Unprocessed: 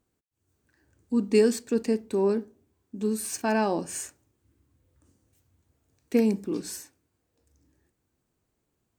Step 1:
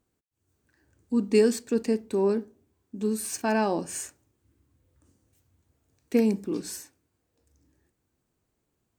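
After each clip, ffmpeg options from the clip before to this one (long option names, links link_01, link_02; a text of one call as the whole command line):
ffmpeg -i in.wav -af anull out.wav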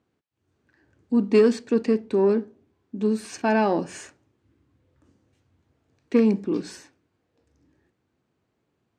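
ffmpeg -i in.wav -af "aeval=exprs='0.316*(cos(1*acos(clip(val(0)/0.316,-1,1)))-cos(1*PI/2))+0.0178*(cos(5*acos(clip(val(0)/0.316,-1,1)))-cos(5*PI/2))':channel_layout=same,highpass=100,lowpass=3800,volume=3dB" out.wav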